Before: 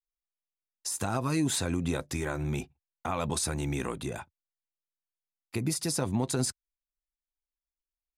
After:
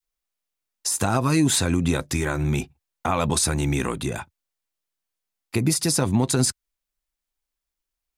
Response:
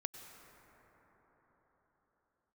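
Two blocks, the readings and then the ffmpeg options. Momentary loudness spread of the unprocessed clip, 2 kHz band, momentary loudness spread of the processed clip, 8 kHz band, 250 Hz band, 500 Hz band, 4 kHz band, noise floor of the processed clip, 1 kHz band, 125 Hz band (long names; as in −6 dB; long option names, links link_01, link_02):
10 LU, +8.5 dB, 10 LU, +9.0 dB, +8.5 dB, +7.0 dB, +9.0 dB, below −85 dBFS, +8.0 dB, +9.0 dB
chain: -af "adynamicequalizer=threshold=0.00501:dfrequency=590:dqfactor=0.98:tfrequency=590:tqfactor=0.98:attack=5:release=100:ratio=0.375:range=2:mode=cutabove:tftype=bell,volume=9dB"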